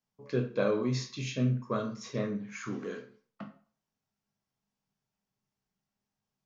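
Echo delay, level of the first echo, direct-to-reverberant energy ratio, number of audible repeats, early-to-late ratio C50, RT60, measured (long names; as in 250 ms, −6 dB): no echo audible, no echo audible, 2.0 dB, no echo audible, 10.0 dB, 0.45 s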